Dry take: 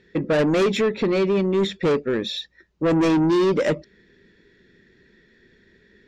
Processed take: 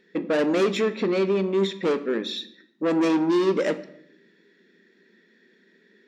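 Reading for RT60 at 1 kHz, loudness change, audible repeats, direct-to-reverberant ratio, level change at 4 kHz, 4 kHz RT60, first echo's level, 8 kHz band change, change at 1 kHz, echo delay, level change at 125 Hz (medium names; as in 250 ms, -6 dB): 0.60 s, -2.5 dB, no echo, 11.5 dB, -2.5 dB, 0.55 s, no echo, no reading, -2.5 dB, no echo, -8.0 dB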